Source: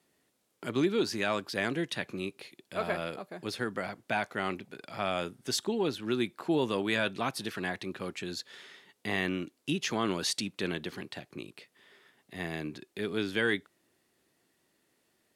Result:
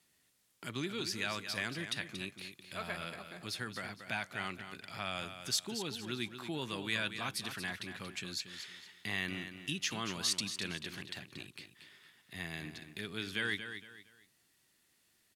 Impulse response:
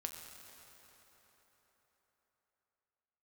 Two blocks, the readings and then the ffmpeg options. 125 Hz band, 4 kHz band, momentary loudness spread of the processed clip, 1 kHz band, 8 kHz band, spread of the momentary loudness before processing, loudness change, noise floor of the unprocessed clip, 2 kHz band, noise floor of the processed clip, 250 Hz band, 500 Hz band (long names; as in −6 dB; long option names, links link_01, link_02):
−5.5 dB, −1.0 dB, 12 LU, −8.0 dB, 0.0 dB, 13 LU, −5.5 dB, −75 dBFS, −3.5 dB, −73 dBFS, −10.0 dB, −13.0 dB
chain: -filter_complex "[0:a]asplit=2[link_01][link_02];[link_02]acompressor=threshold=-41dB:ratio=6,volume=-1dB[link_03];[link_01][link_03]amix=inputs=2:normalize=0,equalizer=frequency=450:width_type=o:width=2.8:gain=-13.5,aecho=1:1:231|462|693:0.335|0.104|0.0322,volume=-2dB"